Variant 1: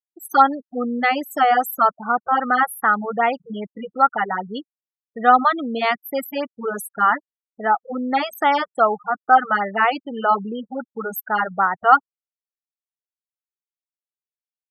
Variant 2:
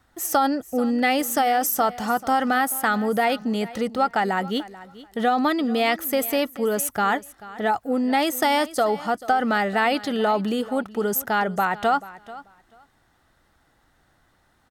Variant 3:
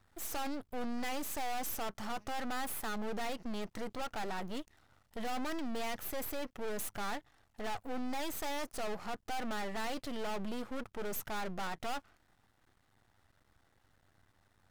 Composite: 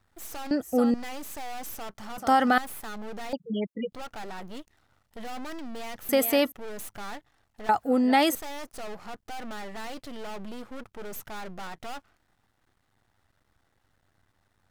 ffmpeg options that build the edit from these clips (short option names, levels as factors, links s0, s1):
-filter_complex "[1:a]asplit=4[s0][s1][s2][s3];[2:a]asplit=6[s4][s5][s6][s7][s8][s9];[s4]atrim=end=0.512[s10];[s0]atrim=start=0.508:end=0.942[s11];[s5]atrim=start=0.938:end=2.182[s12];[s1]atrim=start=2.178:end=2.582[s13];[s6]atrim=start=2.578:end=3.332[s14];[0:a]atrim=start=3.328:end=3.922[s15];[s7]atrim=start=3.918:end=6.092[s16];[s2]atrim=start=6.088:end=6.522[s17];[s8]atrim=start=6.518:end=7.692[s18];[s3]atrim=start=7.688:end=8.352[s19];[s9]atrim=start=8.348[s20];[s10][s11]acrossfade=d=0.004:c1=hsin:c2=hsin[s21];[s21][s12]acrossfade=d=0.004:c1=hsin:c2=hsin[s22];[s22][s13]acrossfade=d=0.004:c1=hsin:c2=hsin[s23];[s23][s14]acrossfade=d=0.004:c1=hsin:c2=hsin[s24];[s24][s15]acrossfade=d=0.004:c1=hsin:c2=hsin[s25];[s25][s16]acrossfade=d=0.004:c1=hsin:c2=hsin[s26];[s26][s17]acrossfade=d=0.004:c1=hsin:c2=hsin[s27];[s27][s18]acrossfade=d=0.004:c1=hsin:c2=hsin[s28];[s28][s19]acrossfade=d=0.004:c1=hsin:c2=hsin[s29];[s29][s20]acrossfade=d=0.004:c1=hsin:c2=hsin"